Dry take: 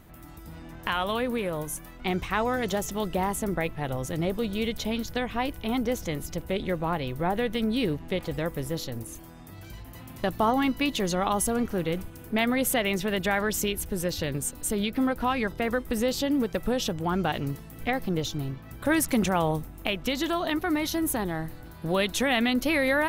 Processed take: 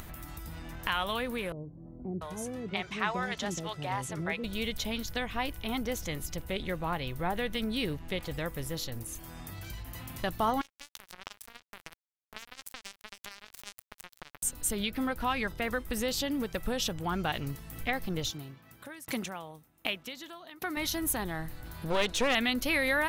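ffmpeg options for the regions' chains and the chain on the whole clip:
-filter_complex "[0:a]asettb=1/sr,asplit=3[a][b][c];[a]atrim=end=1.524[d];[b]atrim=start=1.52:end=4.44,asetpts=PTS-STARTPTS,afade=t=in:d=0.004:c=qsin,afade=t=out:st=2.916:d=0.004:c=qsin,highpass=110,lowpass=6.6k,acrossover=split=520[e][f];[f]adelay=690[g];[e][g]amix=inputs=2:normalize=0,atrim=end_sample=128772[h];[c]atrim=start=4.436[i];[d][h]acrossfade=d=0.004:c1=hsin:c2=qsin[j];[j][i]acrossfade=d=0.004:c1=qsin:c2=hsin,asettb=1/sr,asplit=3[k][l][m];[k]atrim=end=10.614[n];[l]atrim=start=10.61:end=14.43,asetpts=PTS-STARTPTS,afade=t=in:d=0.004:c=qsin,afade=t=out:st=3.816:d=0.004:c=qsin,lowshelf=f=110:g=-6.5,acompressor=threshold=-32dB:ratio=4:attack=3.2:release=140:knee=1:detection=peak,acrusher=bits=3:mix=0:aa=0.5[o];[m]atrim=start=14.426[p];[n][o]acrossfade=d=0.004:c1=hsin:c2=qsin[q];[q][p]acrossfade=d=0.004:c1=qsin:c2=hsin,asettb=1/sr,asplit=3[r][s][t];[r]atrim=end=18.314[u];[s]atrim=start=18.31:end=20.77,asetpts=PTS-STARTPTS,afade=t=in:d=0.004:c=qsin,afade=t=out:st=2.456:d=0.004:c=qsin,highpass=150,aeval=exprs='val(0)*pow(10,-32*if(lt(mod(1.3*n/s,1),2*abs(1.3)/1000),1-mod(1.3*n/s,1)/(2*abs(1.3)/1000),(mod(1.3*n/s,1)-2*abs(1.3)/1000)/(1-2*abs(1.3)/1000))/20)':c=same[v];[t]atrim=start=20.766[w];[u][v]acrossfade=d=0.004:c1=hsin:c2=qsin[x];[x][w]acrossfade=d=0.004:c1=qsin:c2=hsin,asettb=1/sr,asplit=3[y][z][aa];[y]atrim=end=21.904[ab];[z]atrim=start=21.9:end=22.35,asetpts=PTS-STARTPTS,afade=t=in:d=0.004:c=qsin,afade=t=out:st=0.446:d=0.004:c=qsin,lowpass=7.3k,equalizer=f=480:w=1.9:g=9.5,aeval=exprs='clip(val(0),-1,0.0596)':c=same[ac];[aa]atrim=start=22.346[ad];[ab][ac]acrossfade=d=0.004:c1=hsin:c2=qsin[ae];[ae][ad]acrossfade=d=0.004:c1=qsin:c2=hsin,equalizer=f=330:w=0.37:g=-7.5,acompressor=mode=upward:threshold=-35dB:ratio=2.5"

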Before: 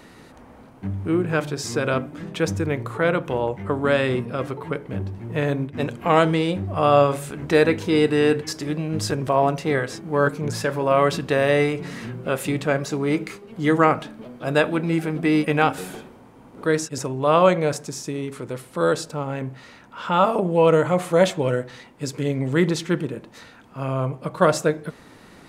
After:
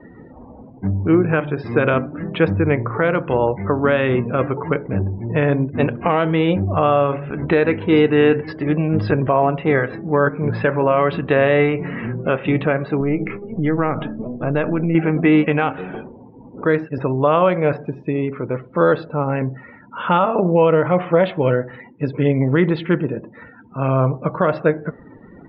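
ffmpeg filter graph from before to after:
-filter_complex "[0:a]asettb=1/sr,asplit=3[a][b][c];[a]atrim=end=13.004[d];[b]atrim=start=13:end=14.95,asetpts=PTS-STARTPTS,afade=t=in:d=0.004:c=qsin,afade=t=out:st=1.946:d=0.004:c=qsin,aeval=exprs='if(lt(val(0),0),0.708*val(0),val(0))':c=same,lowshelf=f=410:g=7.5,acompressor=threshold=-25dB:ratio=3:attack=3.2:release=140:knee=1:detection=peak[e];[c]atrim=start=14.946[f];[d][e]acrossfade=d=0.004:c1=hsin:c2=qsin[g];[g][f]acrossfade=d=0.004:c1=qsin:c2=hsin,lowpass=f=3.1k:w=0.5412,lowpass=f=3.1k:w=1.3066,afftdn=nr=30:nf=-44,alimiter=limit=-12.5dB:level=0:latency=1:release=347,volume=7.5dB"

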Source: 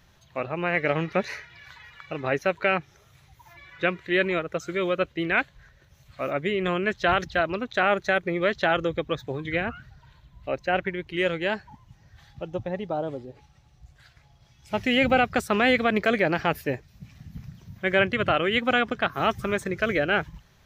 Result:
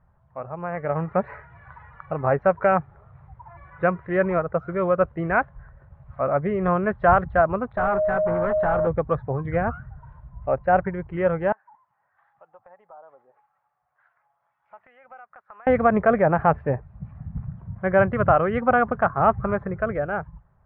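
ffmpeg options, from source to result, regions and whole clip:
-filter_complex "[0:a]asettb=1/sr,asplit=3[a][b][c];[a]atrim=end=7.774[d];[b]atrim=start=7.77:end=8.87,asetpts=PTS-STARTPTS,afade=t=in:d=0.004:c=qsin,afade=t=out:st=1.096:d=0.004:c=qsin,bandreject=f=590:w=6.2,aeval=exprs='val(0)+0.0562*sin(2*PI*620*n/s)':c=same,asoftclip=type=hard:threshold=-25dB[e];[c]atrim=start=8.866[f];[d][e]acrossfade=d=0.004:c1=hsin:c2=qsin[g];[g][f]acrossfade=d=0.004:c1=qsin:c2=hsin,asettb=1/sr,asplit=3[h][i][j];[h]atrim=end=11.524[k];[i]atrim=start=11.52:end=15.67,asetpts=PTS-STARTPTS,afade=t=in:d=0.004:c=qsin,afade=t=out:st=4.146:d=0.004:c=qsin,highpass=1.4k,highshelf=f=2.1k:g=-10,acompressor=threshold=-54dB:ratio=2.5:attack=3.2:release=140:knee=1:detection=peak[l];[j]atrim=start=15.666[m];[k][l]acrossfade=d=0.004:c1=hsin:c2=qsin[n];[n][m]acrossfade=d=0.004:c1=qsin:c2=hsin,lowpass=f=1.2k:w=0.5412,lowpass=f=1.2k:w=1.3066,equalizer=f=320:w=1.3:g=-13,dynaudnorm=f=170:g=13:m=10.5dB"

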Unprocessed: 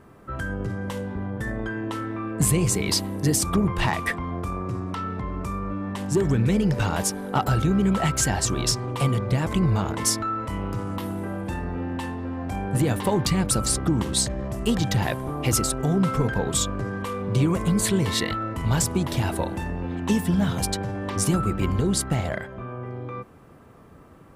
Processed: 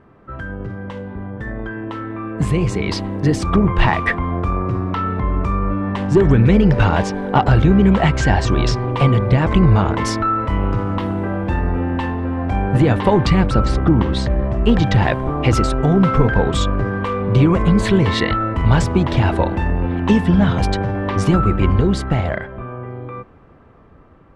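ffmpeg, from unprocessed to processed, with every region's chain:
-filter_complex "[0:a]asettb=1/sr,asplit=3[a][b][c];[a]atrim=end=6.914[d];[b]atrim=start=6.91:end=9.38,asetpts=PTS-STARTPTS,afade=t=in:d=0.004:c=qsin,afade=t=out:st=2.466:d=0.004:c=qsin,bandreject=f=1.3k:w=9.8,acrossover=split=7900[e][f];[f]acompressor=threshold=-42dB:ratio=4:attack=1:release=60[g];[e][g]amix=inputs=2:normalize=0[h];[c]atrim=start=9.376[i];[d][h]acrossfade=d=0.004:c1=hsin:c2=qsin[j];[j][i]acrossfade=d=0.004:c1=qsin:c2=hsin,asettb=1/sr,asplit=3[k][l][m];[k]atrim=end=13.484[n];[l]atrim=start=13.48:end=14.77,asetpts=PTS-STARTPTS,afade=t=in:d=0.004:c=qsin,afade=t=out:st=1.286:d=0.004:c=qsin,aemphasis=mode=reproduction:type=50fm,bandreject=f=90.61:t=h:w=4,bandreject=f=181.22:t=h:w=4,bandreject=f=271.83:t=h:w=4,bandreject=f=362.44:t=h:w=4,bandreject=f=453.05:t=h:w=4,bandreject=f=543.66:t=h:w=4,bandreject=f=634.27:t=h:w=4,bandreject=f=724.88:t=h:w=4,bandreject=f=815.49:t=h:w=4,bandreject=f=906.1:t=h:w=4,bandreject=f=996.71:t=h:w=4,bandreject=f=1.08732k:t=h:w=4,bandreject=f=1.17793k:t=h:w=4,bandreject=f=1.26854k:t=h:w=4,bandreject=f=1.35915k:t=h:w=4,bandreject=f=1.44976k:t=h:w=4,bandreject=f=1.54037k:t=h:w=4,bandreject=f=1.63098k:t=h:w=4,bandreject=f=1.72159k:t=h:w=4,bandreject=f=1.8122k:t=h:w=4,bandreject=f=1.90281k:t=h:w=4,bandreject=f=1.99342k:t=h:w=4,bandreject=f=2.08403k:t=h:w=4,bandreject=f=2.17464k:t=h:w=4,bandreject=f=2.26525k:t=h:w=4,bandreject=f=2.35586k:t=h:w=4,bandreject=f=2.44647k:t=h:w=4,bandreject=f=2.53708k:t=h:w=4,bandreject=f=2.62769k:t=h:w=4,bandreject=f=2.7183k:t=h:w=4[o];[m]atrim=start=14.766[p];[n][o]acrossfade=d=0.004:c1=hsin:c2=qsin[q];[q][p]acrossfade=d=0.004:c1=qsin:c2=hsin,dynaudnorm=f=650:g=9:m=11.5dB,asubboost=boost=2:cutoff=77,lowpass=2.9k,volume=1dB"

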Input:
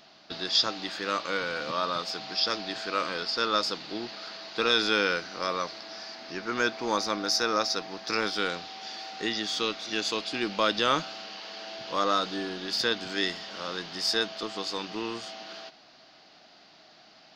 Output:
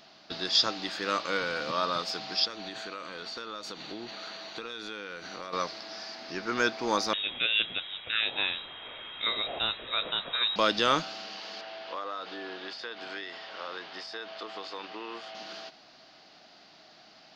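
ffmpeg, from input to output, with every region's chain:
-filter_complex "[0:a]asettb=1/sr,asplit=3[a][b][c];[a]atrim=end=2.454[d];[b]atrim=start=2.45:end=5.53,asetpts=PTS-STARTPTS,afade=t=in:d=0.004:c=qsin,afade=t=out:st=3.076:d=0.004:c=qsin,asuperstop=centerf=5100:order=4:qfactor=6.6,acompressor=threshold=-35dB:ratio=8:attack=3.2:release=140:knee=1:detection=peak[e];[c]atrim=start=5.526[f];[d][e]acrossfade=d=0.004:c1=hsin:c2=qsin[g];[g][f]acrossfade=d=0.004:c1=qsin:c2=hsin,asettb=1/sr,asplit=3[h][i][j];[h]atrim=end=7.134[k];[i]atrim=start=7.13:end=10.56,asetpts=PTS-STARTPTS,afade=t=in:d=0.004:c=qsin,afade=t=out:st=3.426:d=0.004:c=qsin,asubboost=boost=4.5:cutoff=240,lowpass=f=3.4k:t=q:w=0.5098,lowpass=f=3.4k:t=q:w=0.6013,lowpass=f=3.4k:t=q:w=0.9,lowpass=f=3.4k:t=q:w=2.563,afreqshift=-4000[l];[j]atrim=start=10.556[m];[k][l]acrossfade=d=0.004:c1=hsin:c2=qsin[n];[n][m]acrossfade=d=0.004:c1=qsin:c2=hsin,asettb=1/sr,asplit=3[o][p][q];[o]atrim=end=11.614[r];[p]atrim=start=11.61:end=15.35,asetpts=PTS-STARTPTS,afade=t=in:d=0.004:c=qsin,afade=t=out:st=3.736:d=0.004:c=qsin,acompressor=threshold=-30dB:ratio=12:attack=3.2:release=140:knee=1:detection=peak,aeval=exprs='val(0)+0.00398*(sin(2*PI*50*n/s)+sin(2*PI*2*50*n/s)/2+sin(2*PI*3*50*n/s)/3+sin(2*PI*4*50*n/s)/4+sin(2*PI*5*50*n/s)/5)':c=same,highpass=440,lowpass=3.1k[s];[q]atrim=start=15.346[t];[r][s]acrossfade=d=0.004:c1=hsin:c2=qsin[u];[u][t]acrossfade=d=0.004:c1=qsin:c2=hsin"

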